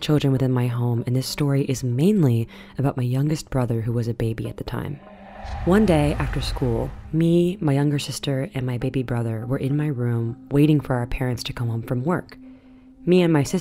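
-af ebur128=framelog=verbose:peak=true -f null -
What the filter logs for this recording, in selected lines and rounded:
Integrated loudness:
  I:         -22.5 LUFS
  Threshold: -32.8 LUFS
Loudness range:
  LRA:         2.4 LU
  Threshold: -43.1 LUFS
  LRA low:   -24.1 LUFS
  LRA high:  -21.7 LUFS
True peak:
  Peak:       -5.5 dBFS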